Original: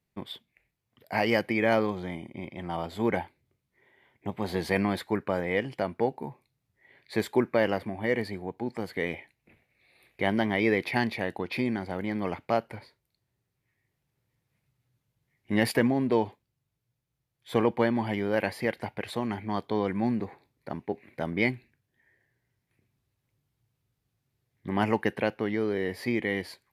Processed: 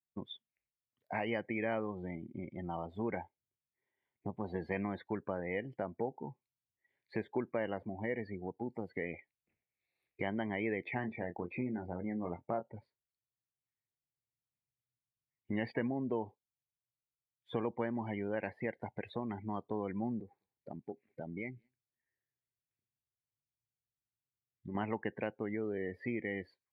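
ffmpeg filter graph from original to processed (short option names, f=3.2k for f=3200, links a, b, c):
-filter_complex "[0:a]asettb=1/sr,asplit=3[a][b][c];[a]atrim=end=10.944[d];[b]atrim=start=10.94:end=12.76,asetpts=PTS-STARTPTS,afade=t=in:d=0.004:c=qsin,afade=t=out:st=1.816:d=0.004:c=qsin,lowpass=f=1.7k:p=1,asplit=2[e][f];[f]adelay=23,volume=-7dB[g];[e][g]amix=inputs=2:normalize=0,atrim=end_sample=80262[h];[c]atrim=start=12.756[i];[d][h]acrossfade=d=0.004:c1=hsin:c2=qsin[j];[j][i]acrossfade=d=0.004:c1=qsin:c2=hsin,asettb=1/sr,asplit=3[k][l][m];[k]atrim=end=20.214[n];[l]atrim=start=20.21:end=24.75,asetpts=PTS-STARTPTS,afade=t=in:d=0.004:c=qsin,afade=t=out:st=4.536:d=0.004:c=qsin,acompressor=threshold=-49dB:ratio=1.5:attack=3.2:release=140:knee=1:detection=peak,aecho=1:1:197:0.0841,atrim=end_sample=200214[o];[m]atrim=start=24.746[p];[n][o]acrossfade=d=0.004:c1=hsin:c2=qsin[q];[q][p]acrossfade=d=0.004:c1=qsin:c2=hsin,acrossover=split=3900[r][s];[s]acompressor=threshold=-55dB:ratio=4:attack=1:release=60[t];[r][t]amix=inputs=2:normalize=0,afftdn=nr=25:nf=-37,acompressor=threshold=-41dB:ratio=2"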